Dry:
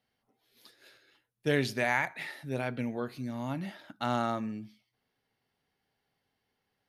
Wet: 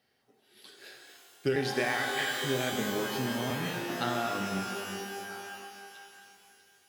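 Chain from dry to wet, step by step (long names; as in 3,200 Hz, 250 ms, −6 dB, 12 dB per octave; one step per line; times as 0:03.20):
pitch shifter gated in a rhythm −2 semitones, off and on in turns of 389 ms
low-shelf EQ 76 Hz −12 dB
notch filter 2,100 Hz, Q 12
downward compressor, threshold −36 dBFS, peak gain reduction 12 dB
thirty-one-band graphic EQ 400 Hz +6 dB, 1,000 Hz −4 dB, 2,000 Hz +6 dB, 5,000 Hz +4 dB
echo through a band-pass that steps 645 ms, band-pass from 410 Hz, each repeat 1.4 octaves, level −11.5 dB
reverb with rising layers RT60 2.5 s, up +12 semitones, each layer −2 dB, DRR 4 dB
level +6 dB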